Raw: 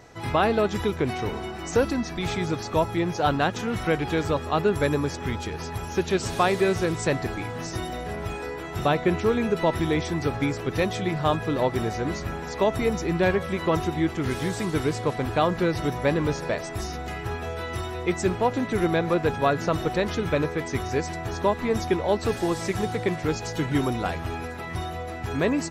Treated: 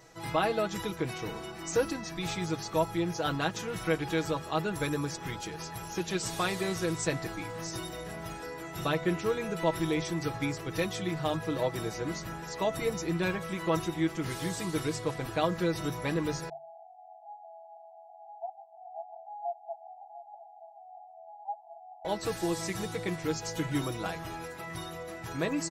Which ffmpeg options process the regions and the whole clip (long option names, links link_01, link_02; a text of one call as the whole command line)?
ffmpeg -i in.wav -filter_complex "[0:a]asettb=1/sr,asplit=3[link_01][link_02][link_03];[link_01]atrim=end=16.494[link_04];[link_02]atrim=start=16.49:end=22.05,asetpts=PTS-STARTPTS,afade=type=in:duration=0.004:curve=qsin,afade=type=out:start_time=5.556:duration=0.004:curve=qsin,asuperpass=centerf=760:order=12:qfactor=3.9,aecho=1:1:700:0.224,atrim=end_sample=245196[link_05];[link_03]atrim=start=22.046[link_06];[link_04][link_05]acrossfade=duration=0.004:curve1=hsin:curve2=qsin[link_07];[link_07][link_06]acrossfade=duration=0.004:curve1=qsin:curve2=hsin,highshelf=frequency=4200:gain=9,bandreject=frequency=50:width_type=h:width=6,bandreject=frequency=100:width_type=h:width=6,bandreject=frequency=150:width_type=h:width=6,aecho=1:1:6.2:0.68,volume=-9dB" out.wav